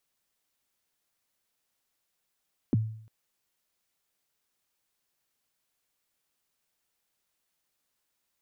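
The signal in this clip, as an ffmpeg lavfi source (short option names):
-f lavfi -i "aevalsrc='0.119*pow(10,-3*t/0.61)*sin(2*PI*(350*0.023/log(110/350)*(exp(log(110/350)*min(t,0.023)/0.023)-1)+110*max(t-0.023,0)))':d=0.35:s=44100"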